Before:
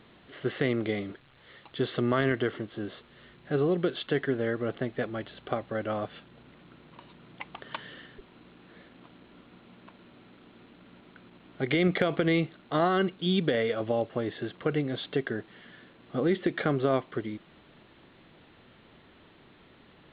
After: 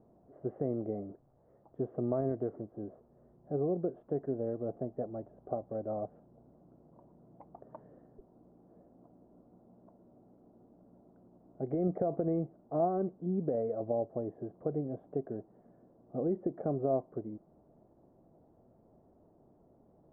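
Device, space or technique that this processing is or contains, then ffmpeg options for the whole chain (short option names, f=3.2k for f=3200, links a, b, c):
under water: -af "lowpass=f=770:w=0.5412,lowpass=f=770:w=1.3066,equalizer=f=670:t=o:w=0.43:g=6.5,volume=-6.5dB"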